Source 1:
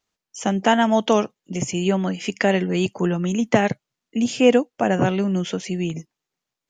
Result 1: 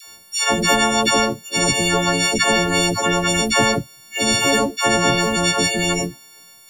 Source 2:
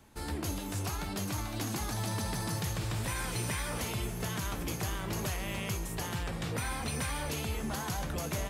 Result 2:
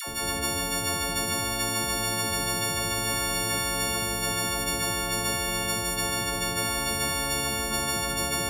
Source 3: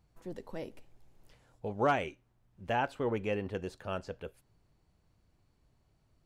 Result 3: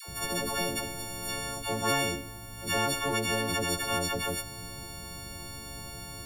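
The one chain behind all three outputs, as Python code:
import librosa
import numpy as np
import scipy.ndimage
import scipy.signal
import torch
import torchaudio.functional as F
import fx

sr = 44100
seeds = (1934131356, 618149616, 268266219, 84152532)

y = fx.freq_snap(x, sr, grid_st=4)
y = fx.dispersion(y, sr, late='lows', ms=78.0, hz=660.0)
y = fx.spectral_comp(y, sr, ratio=4.0)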